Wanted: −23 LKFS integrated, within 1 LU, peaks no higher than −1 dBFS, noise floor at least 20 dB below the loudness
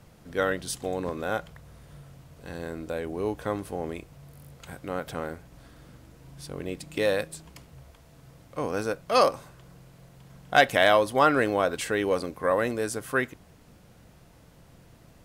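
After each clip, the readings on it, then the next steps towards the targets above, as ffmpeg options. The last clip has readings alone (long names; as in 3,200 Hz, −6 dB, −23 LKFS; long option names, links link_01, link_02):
integrated loudness −27.0 LKFS; sample peak −7.0 dBFS; target loudness −23.0 LKFS
→ -af "volume=4dB"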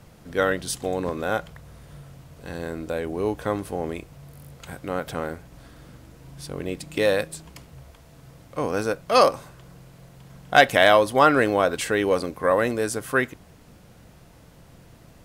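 integrated loudness −23.0 LKFS; sample peak −3.0 dBFS; background noise floor −51 dBFS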